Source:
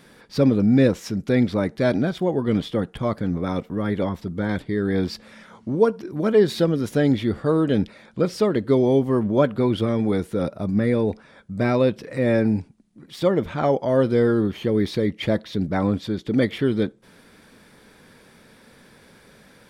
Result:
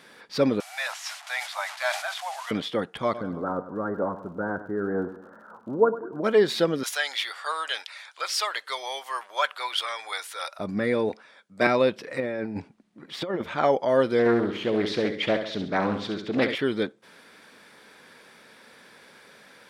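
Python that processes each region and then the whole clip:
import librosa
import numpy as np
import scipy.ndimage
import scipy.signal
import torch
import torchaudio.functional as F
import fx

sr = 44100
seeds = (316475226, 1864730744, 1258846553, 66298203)

y = fx.chain(x, sr, fx.delta_mod(bps=64000, step_db=-35.0),
    fx.steep_highpass(hz=670.0, slope=72),
    fx.sustainer(db_per_s=95.0), at=(0.6, 2.51))
y = fx.ellip_lowpass(y, sr, hz=1500.0, order=4, stop_db=40, at=(3.13, 6.23), fade=0.02)
y = fx.dmg_crackle(y, sr, seeds[0], per_s=45.0, level_db=-51.0, at=(3.13, 6.23), fade=0.02)
y = fx.echo_feedback(y, sr, ms=98, feedback_pct=44, wet_db=-13.5, at=(3.13, 6.23), fade=0.02)
y = fx.chain(y, sr, fx.highpass(hz=810.0, slope=24),
    fx.high_shelf(hz=2800.0, db=11.0), at=(6.83, 10.59))
y = fx.chain(y, sr, fx.highpass(hz=260.0, slope=6),
    fx.band_widen(depth_pct=70), at=(11.09, 11.67))
y = fx.chain(y, sr, fx.high_shelf(hz=4000.0, db=-10.0),
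    fx.over_compress(threshold_db=-23.0, ratio=-0.5), at=(12.2, 13.42))
y = fx.chain(y, sr, fx.bessel_lowpass(hz=7900.0, order=2),
    fx.echo_feedback(ms=68, feedback_pct=47, wet_db=-8.0),
    fx.doppler_dist(depth_ms=0.29), at=(14.19, 16.55))
y = fx.highpass(y, sr, hz=810.0, slope=6)
y = fx.high_shelf(y, sr, hz=6900.0, db=-8.0)
y = F.gain(torch.from_numpy(y), 4.0).numpy()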